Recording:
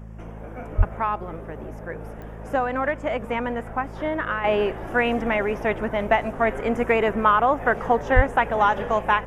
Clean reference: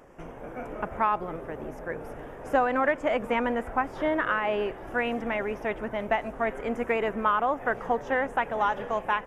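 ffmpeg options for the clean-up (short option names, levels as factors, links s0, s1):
-filter_complex "[0:a]adeclick=t=4,bandreject=f=54.2:t=h:w=4,bandreject=f=108.4:t=h:w=4,bandreject=f=162.6:t=h:w=4,bandreject=f=216.8:t=h:w=4,asplit=3[s0][s1][s2];[s0]afade=t=out:st=0.77:d=0.02[s3];[s1]highpass=f=140:w=0.5412,highpass=f=140:w=1.3066,afade=t=in:st=0.77:d=0.02,afade=t=out:st=0.89:d=0.02[s4];[s2]afade=t=in:st=0.89:d=0.02[s5];[s3][s4][s5]amix=inputs=3:normalize=0,asplit=3[s6][s7][s8];[s6]afade=t=out:st=8.15:d=0.02[s9];[s7]highpass=f=140:w=0.5412,highpass=f=140:w=1.3066,afade=t=in:st=8.15:d=0.02,afade=t=out:st=8.27:d=0.02[s10];[s8]afade=t=in:st=8.27:d=0.02[s11];[s9][s10][s11]amix=inputs=3:normalize=0,asetnsamples=n=441:p=0,asendcmd='4.44 volume volume -6.5dB',volume=1"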